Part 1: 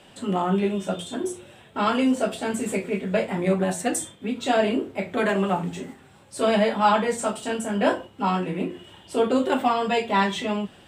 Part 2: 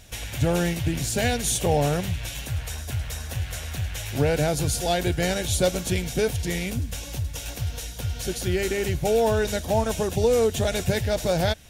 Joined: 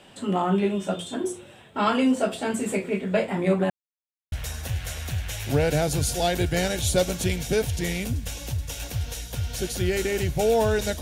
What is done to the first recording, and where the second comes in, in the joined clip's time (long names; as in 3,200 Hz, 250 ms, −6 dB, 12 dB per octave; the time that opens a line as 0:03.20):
part 1
0:03.70–0:04.32: silence
0:04.32: continue with part 2 from 0:02.98